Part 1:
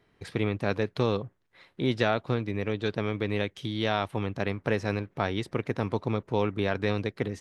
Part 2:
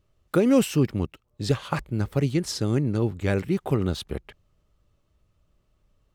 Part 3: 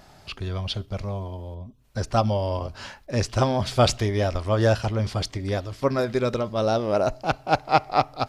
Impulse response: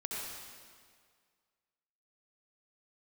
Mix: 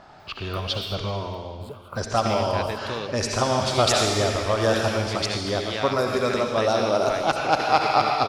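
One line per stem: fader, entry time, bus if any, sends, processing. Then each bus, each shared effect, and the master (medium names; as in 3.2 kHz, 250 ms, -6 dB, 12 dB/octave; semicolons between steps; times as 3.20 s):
-2.5 dB, 1.90 s, no bus, no send, none
-10.0 dB, 0.20 s, bus A, no send, treble shelf 12 kHz +9.5 dB; static phaser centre 1.2 kHz, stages 8; three bands compressed up and down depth 70%
+2.5 dB, 0.00 s, bus A, send -4.5 dB, level-controlled noise filter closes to 2.9 kHz, open at -17.5 dBFS
bus A: 0.0 dB, resonant high shelf 1.8 kHz -9 dB, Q 1.5; compression, threshold -22 dBFS, peak gain reduction 13 dB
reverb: on, RT60 1.9 s, pre-delay 60 ms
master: tilt EQ +2.5 dB/octave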